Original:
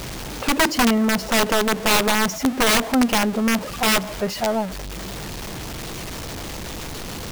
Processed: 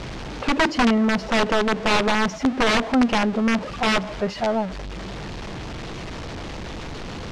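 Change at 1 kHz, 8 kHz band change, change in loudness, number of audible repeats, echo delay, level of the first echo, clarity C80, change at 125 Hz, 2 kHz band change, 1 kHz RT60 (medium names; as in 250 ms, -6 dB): -0.5 dB, -11.5 dB, -1.5 dB, no echo, no echo, no echo, no reverb, 0.0 dB, -1.5 dB, no reverb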